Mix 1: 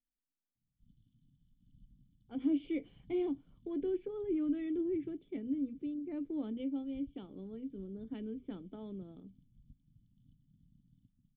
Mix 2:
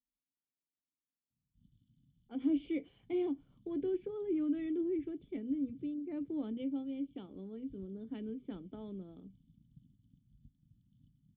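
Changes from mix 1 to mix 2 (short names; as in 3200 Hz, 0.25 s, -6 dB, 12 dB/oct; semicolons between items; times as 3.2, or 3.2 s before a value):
background: entry +0.75 s; master: add HPF 44 Hz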